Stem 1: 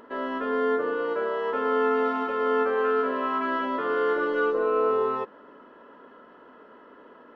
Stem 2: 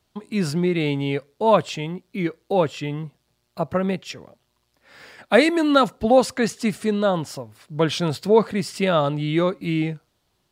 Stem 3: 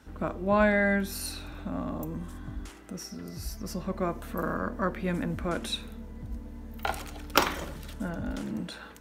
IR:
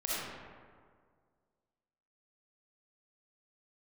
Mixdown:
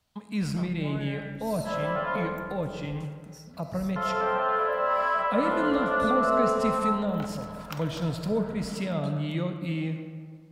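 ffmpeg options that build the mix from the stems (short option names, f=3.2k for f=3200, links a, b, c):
-filter_complex "[0:a]lowshelf=f=420:t=q:w=3:g=-13.5,adelay=1550,volume=-1dB,asplit=3[a][b][c];[a]atrim=end=2.16,asetpts=PTS-STARTPTS,afade=t=out:st=2.156:d=0.004:c=hsin[d];[b]atrim=start=2.16:end=3.96,asetpts=PTS-STARTPTS,volume=0[e];[c]atrim=start=3.96,asetpts=PTS-STARTPTS,afade=t=in:d=0.004:c=hsin[f];[d][e][f]concat=n=3:v=0:a=1,asplit=2[g][h];[h]volume=-5.5dB[i];[1:a]acrossover=split=450[j][k];[k]acompressor=threshold=-33dB:ratio=6[l];[j][l]amix=inputs=2:normalize=0,volume=-6.5dB,asplit=3[m][n][o];[n]volume=-9.5dB[p];[2:a]adelay=350,volume=-9.5dB,asplit=2[q][r];[r]volume=-18dB[s];[o]apad=whole_len=392770[t];[g][t]sidechaincompress=threshold=-40dB:ratio=8:attack=16:release=726[u];[u][q]amix=inputs=2:normalize=0,acompressor=threshold=-36dB:ratio=6,volume=0dB[v];[3:a]atrim=start_sample=2205[w];[i][p]amix=inputs=2:normalize=0[x];[x][w]afir=irnorm=-1:irlink=0[y];[s]aecho=0:1:248:1[z];[m][v][y][z]amix=inputs=4:normalize=0,equalizer=f=370:t=o:w=0.36:g=-13.5"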